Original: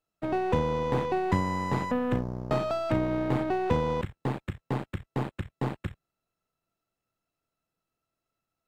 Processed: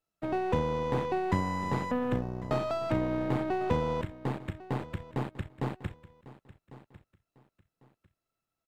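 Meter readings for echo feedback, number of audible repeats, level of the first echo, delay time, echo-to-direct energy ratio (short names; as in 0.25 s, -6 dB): 25%, 2, -17.5 dB, 1.099 s, -17.5 dB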